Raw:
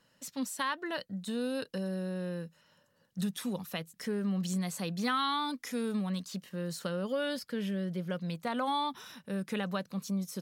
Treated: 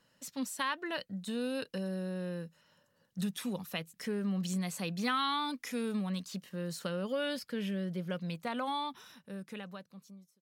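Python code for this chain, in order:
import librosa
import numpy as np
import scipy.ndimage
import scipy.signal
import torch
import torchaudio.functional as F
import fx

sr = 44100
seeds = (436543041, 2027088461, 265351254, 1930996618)

y = fx.fade_out_tail(x, sr, length_s=2.22)
y = fx.dynamic_eq(y, sr, hz=2500.0, q=2.7, threshold_db=-55.0, ratio=4.0, max_db=5)
y = y * librosa.db_to_amplitude(-1.5)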